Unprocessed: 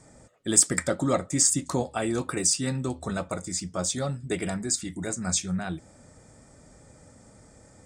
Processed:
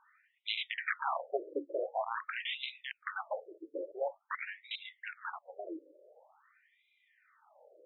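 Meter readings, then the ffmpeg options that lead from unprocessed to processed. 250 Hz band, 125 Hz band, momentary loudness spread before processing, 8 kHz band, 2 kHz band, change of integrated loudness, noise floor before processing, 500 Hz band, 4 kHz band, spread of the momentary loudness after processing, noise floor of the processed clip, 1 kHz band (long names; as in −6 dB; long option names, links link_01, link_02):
−21.0 dB, below −40 dB, 11 LU, below −40 dB, −1.5 dB, −13.0 dB, −55 dBFS, −8.0 dB, −7.0 dB, 10 LU, −76 dBFS, −3.0 dB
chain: -af "aeval=exprs='(mod(10*val(0)+1,2)-1)/10':channel_layout=same,afftfilt=real='re*between(b*sr/1024,410*pow(2900/410,0.5+0.5*sin(2*PI*0.47*pts/sr))/1.41,410*pow(2900/410,0.5+0.5*sin(2*PI*0.47*pts/sr))*1.41)':imag='im*between(b*sr/1024,410*pow(2900/410,0.5+0.5*sin(2*PI*0.47*pts/sr))/1.41,410*pow(2900/410,0.5+0.5*sin(2*PI*0.47*pts/sr))*1.41)':win_size=1024:overlap=0.75"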